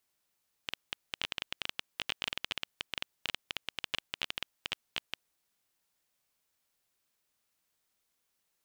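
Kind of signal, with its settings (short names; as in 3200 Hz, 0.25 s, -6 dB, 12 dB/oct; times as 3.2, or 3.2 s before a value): random clicks 13/s -15 dBFS 4.72 s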